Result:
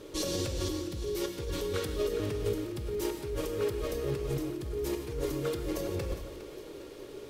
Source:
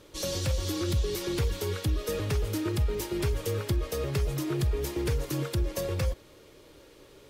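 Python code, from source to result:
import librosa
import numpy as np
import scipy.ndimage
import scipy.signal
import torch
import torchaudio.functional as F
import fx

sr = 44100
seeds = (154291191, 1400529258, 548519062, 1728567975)

y = fx.peak_eq(x, sr, hz=370.0, db=9.0, octaves=1.0)
y = fx.over_compress(y, sr, threshold_db=-31.0, ratio=-1.0)
y = fx.echo_split(y, sr, split_hz=540.0, low_ms=128, high_ms=409, feedback_pct=52, wet_db=-13.0)
y = fx.rev_gated(y, sr, seeds[0], gate_ms=190, shape='flat', drr_db=5.5)
y = F.gain(torch.from_numpy(y), -3.5).numpy()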